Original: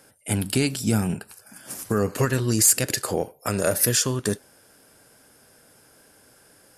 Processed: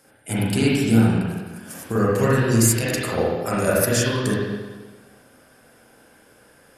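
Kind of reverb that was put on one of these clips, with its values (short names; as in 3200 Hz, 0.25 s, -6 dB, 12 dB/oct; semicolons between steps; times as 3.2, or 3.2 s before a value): spring tank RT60 1.3 s, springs 35/44/48 ms, chirp 50 ms, DRR -7.5 dB; gain -3.5 dB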